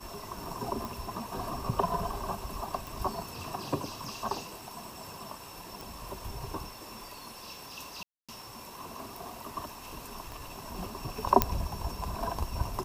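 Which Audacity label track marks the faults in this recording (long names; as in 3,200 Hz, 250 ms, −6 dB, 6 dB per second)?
0.850000	0.850000	click
2.870000	2.870000	click
5.810000	5.810000	click
8.030000	8.290000	drop-out 256 ms
10.320000	10.320000	click
11.420000	11.420000	click −5 dBFS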